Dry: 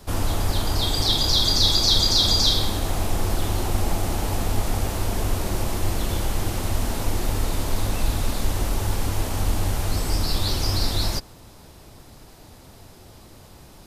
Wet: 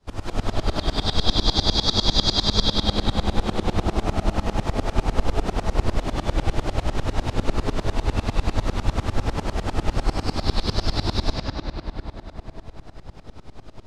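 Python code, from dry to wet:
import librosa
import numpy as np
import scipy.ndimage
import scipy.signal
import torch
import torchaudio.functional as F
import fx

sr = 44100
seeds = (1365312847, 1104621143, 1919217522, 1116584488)

y = fx.air_absorb(x, sr, metres=88.0)
y = fx.rev_freeverb(y, sr, rt60_s=4.8, hf_ratio=0.55, predelay_ms=75, drr_db=-8.5)
y = fx.tremolo_decay(y, sr, direction='swelling', hz=10.0, depth_db=23)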